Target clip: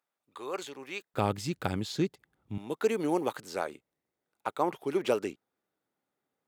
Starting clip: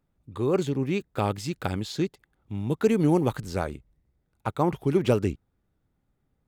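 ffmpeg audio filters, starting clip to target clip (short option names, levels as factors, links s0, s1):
-af "asetnsamples=n=441:p=0,asendcmd='1.14 highpass f 92;2.58 highpass f 400',highpass=790,volume=0.794"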